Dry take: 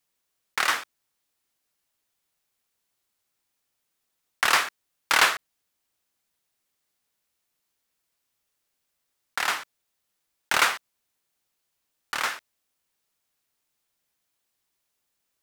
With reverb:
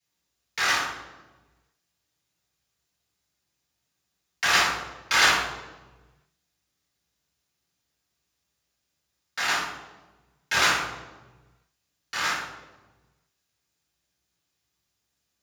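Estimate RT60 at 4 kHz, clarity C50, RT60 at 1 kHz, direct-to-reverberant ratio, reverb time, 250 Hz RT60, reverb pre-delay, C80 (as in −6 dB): 0.80 s, 2.0 dB, 1.1 s, −9.5 dB, 1.2 s, 1.6 s, 3 ms, 6.0 dB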